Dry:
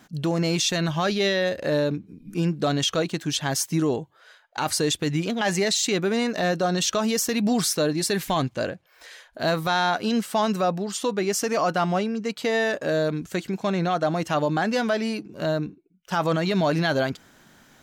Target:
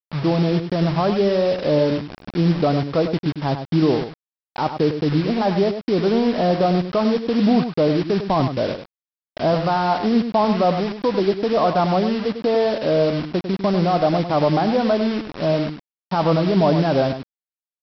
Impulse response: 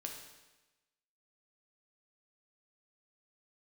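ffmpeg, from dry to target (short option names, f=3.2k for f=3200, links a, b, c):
-af "lowpass=f=1.1k:w=0.5412,lowpass=f=1.1k:w=1.3066,aresample=11025,acrusher=bits=5:mix=0:aa=0.000001,aresample=44100,aecho=1:1:100:0.355,volume=5.5dB"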